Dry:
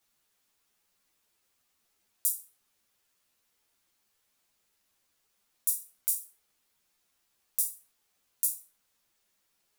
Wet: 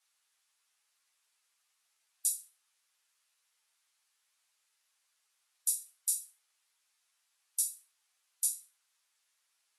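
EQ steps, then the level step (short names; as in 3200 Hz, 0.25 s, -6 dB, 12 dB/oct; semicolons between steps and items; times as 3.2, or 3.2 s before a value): dynamic EQ 4000 Hz, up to +5 dB, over -53 dBFS, Q 1.3; HPF 1000 Hz 12 dB/oct; brick-wall FIR low-pass 12000 Hz; 0.0 dB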